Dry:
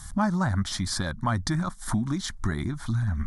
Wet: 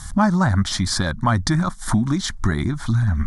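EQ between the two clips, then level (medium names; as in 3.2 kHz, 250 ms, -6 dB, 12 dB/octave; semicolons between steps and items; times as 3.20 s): low-pass 10 kHz 12 dB/octave; +7.5 dB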